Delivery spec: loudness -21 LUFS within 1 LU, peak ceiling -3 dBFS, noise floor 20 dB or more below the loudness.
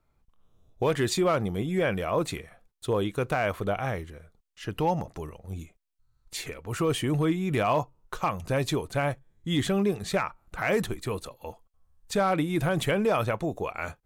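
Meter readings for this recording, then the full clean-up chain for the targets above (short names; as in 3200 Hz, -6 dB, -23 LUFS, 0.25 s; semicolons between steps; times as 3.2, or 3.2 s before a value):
clipped 0.3%; flat tops at -17.0 dBFS; loudness -28.0 LUFS; peak -17.0 dBFS; loudness target -21.0 LUFS
-> clip repair -17 dBFS; gain +7 dB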